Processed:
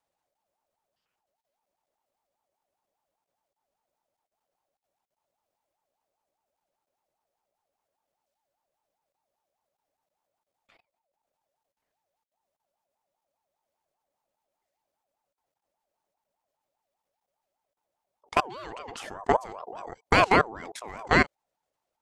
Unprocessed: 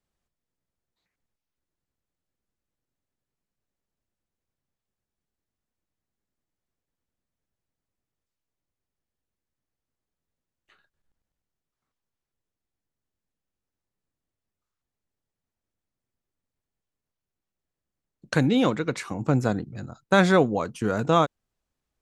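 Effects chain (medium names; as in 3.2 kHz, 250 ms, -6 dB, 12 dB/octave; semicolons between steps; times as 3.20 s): dynamic bell 420 Hz, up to -7 dB, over -33 dBFS, Q 0.98; level held to a coarse grid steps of 22 dB; ring modulator with a swept carrier 730 Hz, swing 25%, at 5 Hz; trim +7 dB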